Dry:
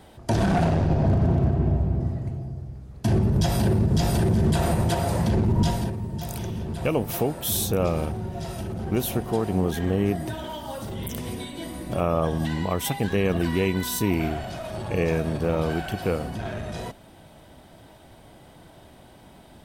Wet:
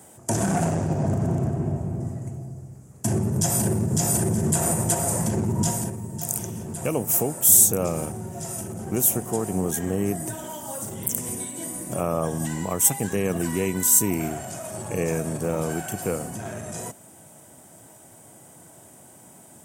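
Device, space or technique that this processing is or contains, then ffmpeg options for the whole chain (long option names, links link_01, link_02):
budget condenser microphone: -af "highpass=frequency=100:width=0.5412,highpass=frequency=100:width=1.3066,highshelf=frequency=5500:width_type=q:width=3:gain=11.5,volume=-1.5dB"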